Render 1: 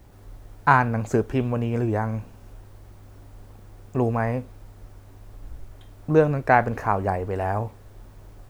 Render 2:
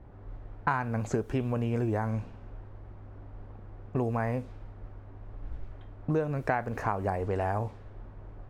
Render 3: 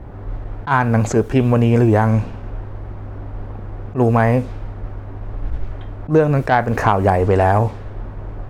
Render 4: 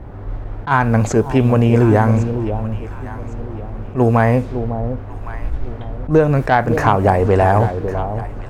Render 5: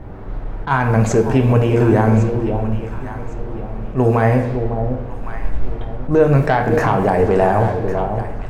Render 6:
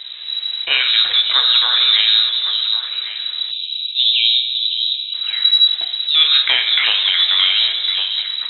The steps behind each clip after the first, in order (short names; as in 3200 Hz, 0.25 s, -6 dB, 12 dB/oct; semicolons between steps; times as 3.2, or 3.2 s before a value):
low-pass opened by the level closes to 1400 Hz, open at -20.5 dBFS; compressor 5:1, threshold -26 dBFS, peak gain reduction 13.5 dB
in parallel at -3.5 dB: sine folder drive 5 dB, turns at -12.5 dBFS; on the sum: attack slew limiter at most 250 dB/s; gain +7 dB
echo with dull and thin repeats by turns 0.553 s, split 820 Hz, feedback 52%, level -8.5 dB; gain +1 dB
limiter -7 dBFS, peak gain reduction 5.5 dB; on a send at -4 dB: reverb RT60 1.1 s, pre-delay 4 ms
inverted band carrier 3900 Hz; spectral delete 3.51–5.14, 230–2300 Hz; band shelf 840 Hz +11 dB 2.9 oct; gain -1.5 dB